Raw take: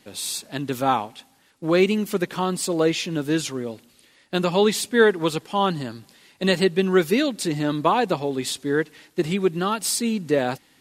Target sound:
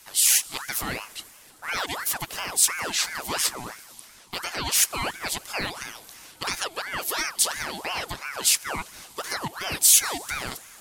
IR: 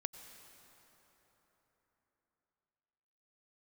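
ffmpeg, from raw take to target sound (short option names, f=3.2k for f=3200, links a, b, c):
-filter_complex "[0:a]alimiter=limit=-15dB:level=0:latency=1:release=254,asplit=2[a][b];[1:a]atrim=start_sample=2205,asetrate=30870,aresample=44100[c];[b][c]afir=irnorm=-1:irlink=0,volume=-11dB[d];[a][d]amix=inputs=2:normalize=0,crystalizer=i=9:c=0,aeval=exprs='val(0)*sin(2*PI*1200*n/s+1200*0.6/2.9*sin(2*PI*2.9*n/s))':c=same,volume=-8dB"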